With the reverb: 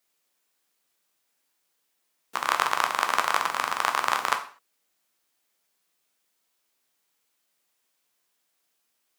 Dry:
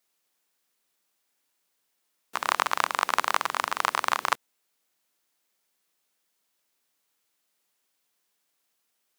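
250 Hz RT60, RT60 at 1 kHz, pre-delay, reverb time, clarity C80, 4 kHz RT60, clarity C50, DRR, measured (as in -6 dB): 0.40 s, 0.45 s, 6 ms, 0.45 s, 15.5 dB, n/a, 11.5 dB, 4.5 dB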